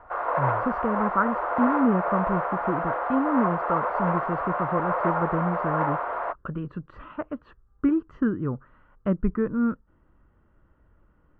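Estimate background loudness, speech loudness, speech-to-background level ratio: −27.0 LKFS, −28.0 LKFS, −1.0 dB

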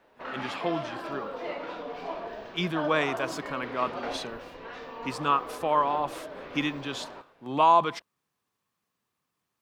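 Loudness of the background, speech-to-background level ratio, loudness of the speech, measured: −38.0 LKFS, 9.0 dB, −29.0 LKFS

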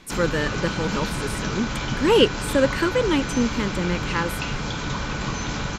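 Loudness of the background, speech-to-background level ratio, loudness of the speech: −28.0 LKFS, 4.0 dB, −24.0 LKFS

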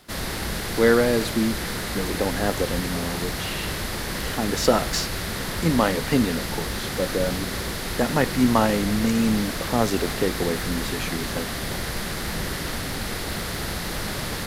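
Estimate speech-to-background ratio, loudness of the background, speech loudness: 3.5 dB, −28.5 LKFS, −25.0 LKFS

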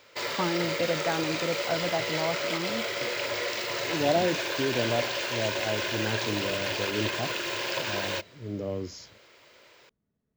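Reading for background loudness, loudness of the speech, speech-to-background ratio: −30.0 LKFS, −32.5 LKFS, −2.5 dB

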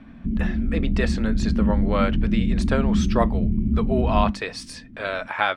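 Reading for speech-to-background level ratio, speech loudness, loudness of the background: −4.5 dB, −28.0 LKFS, −23.5 LKFS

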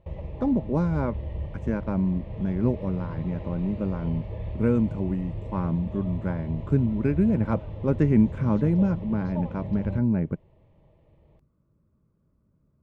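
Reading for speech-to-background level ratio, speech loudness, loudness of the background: 9.5 dB, −26.5 LKFS, −36.0 LKFS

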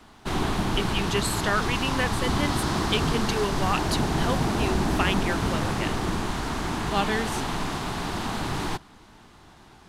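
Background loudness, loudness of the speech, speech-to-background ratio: −27.5 LKFS, −29.5 LKFS, −2.0 dB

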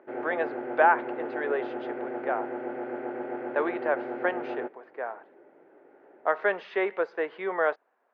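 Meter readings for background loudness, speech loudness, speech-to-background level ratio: −35.0 LKFS, −29.5 LKFS, 5.5 dB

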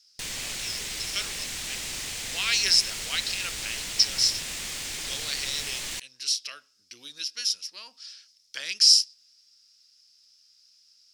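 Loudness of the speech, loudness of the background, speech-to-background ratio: −24.5 LKFS, −32.0 LKFS, 7.5 dB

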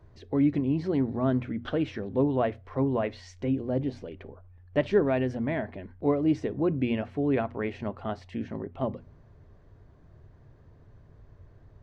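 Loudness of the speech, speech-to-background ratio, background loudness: −29.0 LKFS, 16.0 dB, −45.0 LKFS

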